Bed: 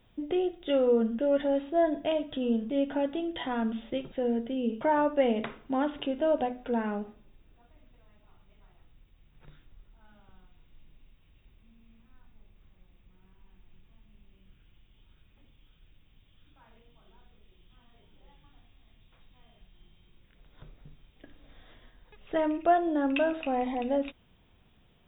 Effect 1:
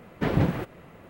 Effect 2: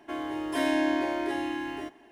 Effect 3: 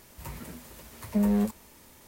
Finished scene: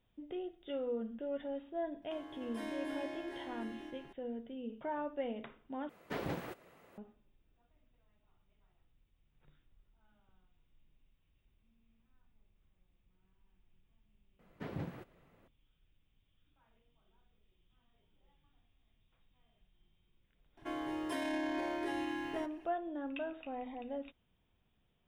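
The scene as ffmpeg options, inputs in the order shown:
-filter_complex "[2:a]asplit=2[a][b];[1:a]asplit=2[c][d];[0:a]volume=-13.5dB[e];[a]aecho=1:1:301:0.668[f];[c]bass=f=250:g=-11,treble=f=4k:g=5[g];[d]highpass=74[h];[b]alimiter=limit=-23dB:level=0:latency=1:release=29[i];[e]asplit=2[j][k];[j]atrim=end=5.894[l];[g]atrim=end=1.09,asetpts=PTS-STARTPTS,volume=-10.5dB[m];[k]atrim=start=6.976[n];[f]atrim=end=2.11,asetpts=PTS-STARTPTS,volume=-17dB,afade=t=in:d=0.004:c=hsin,afade=t=out:st=2.106:d=0.004:c=hsin,adelay=2020[o];[h]atrim=end=1.09,asetpts=PTS-STARTPTS,volume=-18dB,afade=t=in:d=0.004:c=hsin,afade=t=out:st=1.086:d=0.004:c=hsin,adelay=14390[p];[i]atrim=end=2.11,asetpts=PTS-STARTPTS,volume=-6dB,afade=t=in:d=0.004:c=hsin,afade=t=out:st=2.106:d=0.004:c=hsin,adelay=20570[q];[l][m]acrossfade=d=0.004:c1=hsin:c2=hsin[r];[r][n]acrossfade=d=0.004:c1=hsin:c2=hsin[s];[s][o][p][q]amix=inputs=4:normalize=0"

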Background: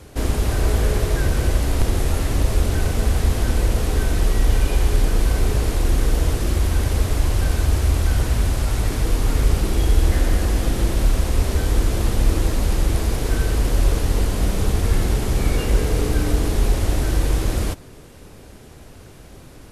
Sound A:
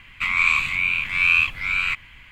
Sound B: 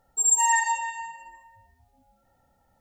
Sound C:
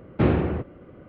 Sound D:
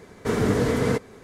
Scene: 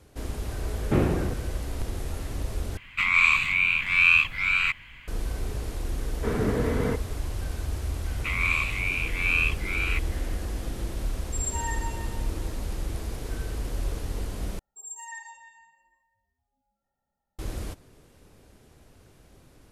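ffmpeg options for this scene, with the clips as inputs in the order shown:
-filter_complex "[1:a]asplit=2[a][b];[2:a]asplit=2[c][d];[0:a]volume=-12.5dB[e];[4:a]lowpass=2.9k[f];[d]aecho=1:1:4.9:0.37[g];[e]asplit=3[h][i][j];[h]atrim=end=2.774[k];[a]atrim=end=2.31,asetpts=PTS-STARTPTS,volume=-1dB[l];[i]atrim=start=5.076:end=14.594[m];[g]atrim=end=2.8,asetpts=PTS-STARTPTS,volume=-18dB[n];[j]atrim=start=17.386[o];[3:a]atrim=end=1.08,asetpts=PTS-STARTPTS,volume=-3dB,afade=t=in:d=0.004:c=hsin,afade=t=out:st=1.076:d=0.004:c=hsin,adelay=720[p];[f]atrim=end=1.23,asetpts=PTS-STARTPTS,volume=-4.5dB,afade=t=in:d=0.004:c=hsin,afade=t=out:st=1.226:d=0.004:c=hsin,adelay=5980[q];[b]atrim=end=2.31,asetpts=PTS-STARTPTS,volume=-7dB,afade=t=in:d=0.004:c=hsin,afade=t=out:st=2.306:d=0.004:c=hsin,adelay=8040[r];[c]atrim=end=2.8,asetpts=PTS-STARTPTS,volume=-12dB,afade=t=in:d=0.004:c=hsin,afade=t=out:st=2.796:d=0.004:c=hsin,adelay=11150[s];[k][l]acrossfade=d=0.004:c1=hsin:c2=hsin[t];[t][m]acrossfade=d=0.004:c1=hsin:c2=hsin[u];[u][n]acrossfade=d=0.004:c1=hsin:c2=hsin[v];[v][o]acrossfade=d=0.004:c1=hsin:c2=hsin[w];[w][p][q][r][s]amix=inputs=5:normalize=0"

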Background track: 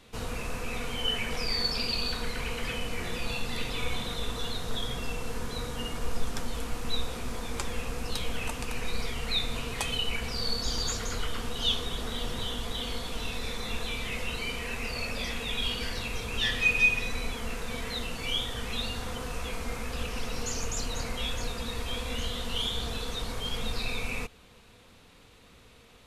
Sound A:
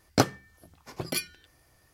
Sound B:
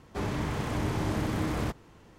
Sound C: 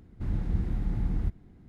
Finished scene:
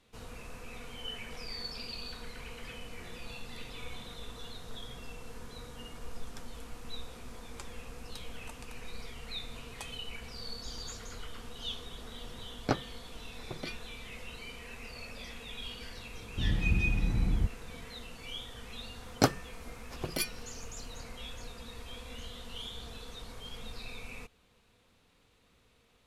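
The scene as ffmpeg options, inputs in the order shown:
-filter_complex "[1:a]asplit=2[a][b];[0:a]volume=-11.5dB[c];[a]lowpass=3.6k,atrim=end=1.93,asetpts=PTS-STARTPTS,volume=-7.5dB,afade=t=in:d=0.004:c=hsin,afade=t=out:st=1.926:d=0.004:c=hsin,adelay=12510[d];[3:a]atrim=end=1.68,asetpts=PTS-STARTPTS,afade=t=in:d=0.004:c=hsin,afade=t=out:st=1.676:d=0.004:c=hsin,adelay=16170[e];[b]atrim=end=1.93,asetpts=PTS-STARTPTS,volume=-3dB,afade=t=in:d=0.004:c=hsin,afade=t=out:st=1.926:d=0.004:c=hsin,adelay=19040[f];[c][d][e][f]amix=inputs=4:normalize=0"

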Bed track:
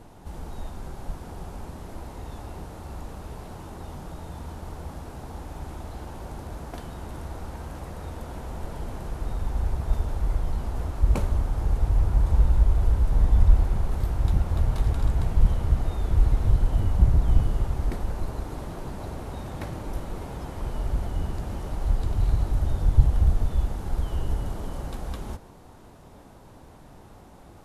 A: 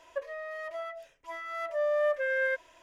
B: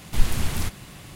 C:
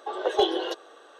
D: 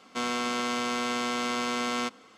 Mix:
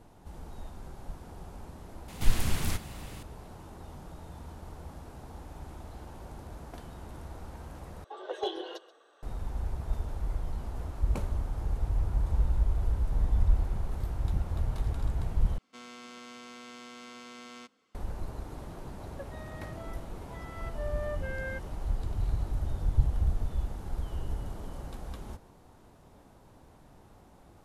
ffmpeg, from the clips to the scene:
-filter_complex "[0:a]volume=-7.5dB[a];[3:a]aecho=1:1:132:0.133[b];[4:a]equalizer=f=830:t=o:w=1.6:g=-3.5[c];[a]asplit=3[d][e][f];[d]atrim=end=8.044[g];[b]atrim=end=1.19,asetpts=PTS-STARTPTS,volume=-11dB[h];[e]atrim=start=9.226:end=15.584[i];[c]atrim=end=2.37,asetpts=PTS-STARTPTS,volume=-16.5dB[j];[f]atrim=start=17.946[k];[2:a]atrim=end=1.15,asetpts=PTS-STARTPTS,volume=-4dB,afade=t=in:d=0.004:c=hsin,afade=t=out:st=1.146:d=0.004:c=hsin,adelay=2080[l];[1:a]atrim=end=2.82,asetpts=PTS-STARTPTS,volume=-10dB,afade=t=in:d=0.004:c=hsin,afade=t=out:st=2.816:d=0.004:c=hsin,adelay=19030[m];[g][h]acrossfade=d=0.004:c1=hsin:c2=hsin[n];[n][i]acrossfade=d=0.004:c1=hsin:c2=hsin[o];[o][j]acrossfade=d=0.004:c1=hsin:c2=hsin[p];[p][k]acrossfade=d=0.004:c1=hsin:c2=hsin[q];[q][l][m]amix=inputs=3:normalize=0"

